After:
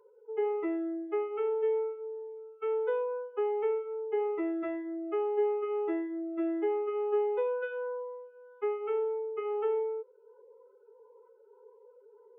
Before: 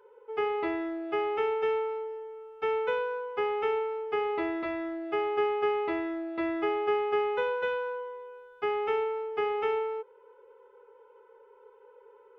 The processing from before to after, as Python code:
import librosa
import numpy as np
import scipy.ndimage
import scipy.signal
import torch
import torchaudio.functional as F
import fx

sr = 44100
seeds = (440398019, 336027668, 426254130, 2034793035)

y = fx.spec_expand(x, sr, power=1.7)
y = fx.notch_cascade(y, sr, direction='rising', hz=1.6)